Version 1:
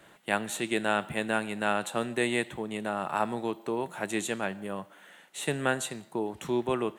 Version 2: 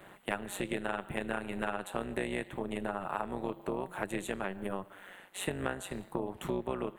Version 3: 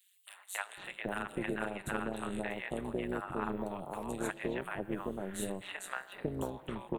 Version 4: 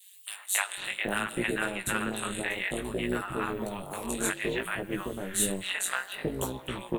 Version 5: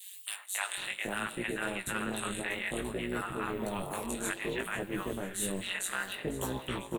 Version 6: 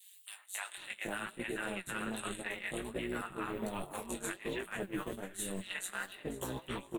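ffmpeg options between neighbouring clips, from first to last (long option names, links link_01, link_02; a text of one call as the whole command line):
ffmpeg -i in.wav -af "equalizer=frequency=5600:width_type=o:width=1.2:gain=-12.5,tremolo=f=190:d=0.824,acompressor=threshold=-39dB:ratio=4,volume=7dB" out.wav
ffmpeg -i in.wav -filter_complex "[0:a]acrossover=split=770|3600[link_01][link_02][link_03];[link_02]adelay=270[link_04];[link_01]adelay=770[link_05];[link_05][link_04][link_03]amix=inputs=3:normalize=0" out.wav
ffmpeg -i in.wav -af "adynamicequalizer=threshold=0.00251:dfrequency=810:dqfactor=1.7:tfrequency=810:tqfactor=1.7:attack=5:release=100:ratio=0.375:range=3:mode=cutabove:tftype=bell,flanger=delay=15.5:depth=6.2:speed=0.6,highshelf=frequency=2100:gain=12,volume=7.5dB" out.wav
ffmpeg -i in.wav -af "areverse,acompressor=threshold=-39dB:ratio=5,areverse,aecho=1:1:499|998|1497|1996:0.178|0.0818|0.0376|0.0173,volume=6.5dB" out.wav
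ffmpeg -i in.wav -af "agate=range=-10dB:threshold=-35dB:ratio=16:detection=peak,alimiter=level_in=2.5dB:limit=-24dB:level=0:latency=1:release=182,volume=-2.5dB,flanger=delay=2.5:depth=4.3:regen=62:speed=1.3:shape=triangular,volume=4dB" out.wav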